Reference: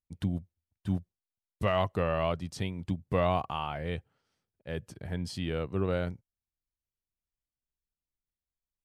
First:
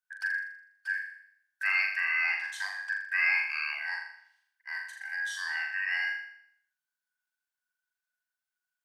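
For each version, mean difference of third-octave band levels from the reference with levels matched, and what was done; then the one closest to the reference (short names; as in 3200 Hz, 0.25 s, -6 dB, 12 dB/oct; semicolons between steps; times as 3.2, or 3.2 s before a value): 20.0 dB: four-band scrambler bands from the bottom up 2143; steep high-pass 710 Hz 72 dB/oct; dynamic EQ 1700 Hz, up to -3 dB, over -41 dBFS, Q 1.2; flutter echo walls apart 7 m, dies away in 0.67 s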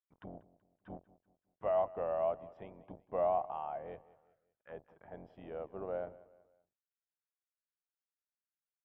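9.0 dB: octaver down 2 oct, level +3 dB; auto-wah 690–1500 Hz, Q 3.2, down, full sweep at -30 dBFS; polynomial smoothing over 25 samples; on a send: feedback echo 0.189 s, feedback 41%, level -19.5 dB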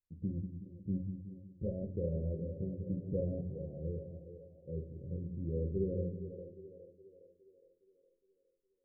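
13.0 dB: rattling part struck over -32 dBFS, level -24 dBFS; rippled Chebyshev low-pass 550 Hz, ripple 3 dB; split-band echo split 380 Hz, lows 0.185 s, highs 0.413 s, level -8 dB; shoebox room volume 130 m³, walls furnished, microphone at 0.89 m; gain -5.5 dB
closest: second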